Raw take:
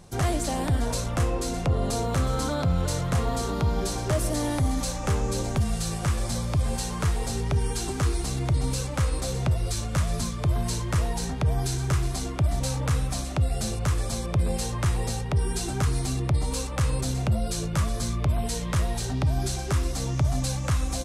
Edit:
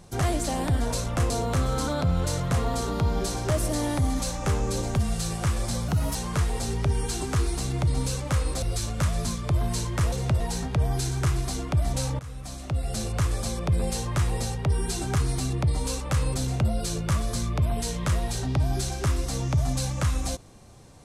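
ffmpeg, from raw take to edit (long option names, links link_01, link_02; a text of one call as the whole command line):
ffmpeg -i in.wav -filter_complex "[0:a]asplit=8[link_01][link_02][link_03][link_04][link_05][link_06][link_07][link_08];[link_01]atrim=end=1.302[link_09];[link_02]atrim=start=1.908:end=6.494[link_10];[link_03]atrim=start=6.49:end=6.82,asetpts=PTS-STARTPTS,asetrate=53361,aresample=44100,atrim=end_sample=12027,asetpts=PTS-STARTPTS[link_11];[link_04]atrim=start=6.816:end=9.292[link_12];[link_05]atrim=start=9.568:end=11.072[link_13];[link_06]atrim=start=9.288:end=9.572[link_14];[link_07]atrim=start=11.068:end=12.86,asetpts=PTS-STARTPTS,afade=type=out:start_time=1.788:duration=0.004:curve=hsin:silence=0.112202[link_15];[link_08]atrim=start=12.86,asetpts=PTS-STARTPTS,afade=type=in:duration=0.92:silence=0.112202[link_16];[link_09][link_10]acrossfade=duration=0.004:curve1=hsin:curve2=hsin[link_17];[link_17][link_11]acrossfade=duration=0.004:curve1=hsin:curve2=hsin[link_18];[link_18][link_12]acrossfade=duration=0.004:curve1=hsin:curve2=hsin[link_19];[link_19][link_13]acrossfade=duration=0.004:curve1=hsin:curve2=hsin[link_20];[link_20][link_14]acrossfade=duration=0.004:curve1=hsin:curve2=hsin[link_21];[link_15][link_16]concat=n=2:v=0:a=1[link_22];[link_21][link_22]acrossfade=duration=0.004:curve1=hsin:curve2=hsin" out.wav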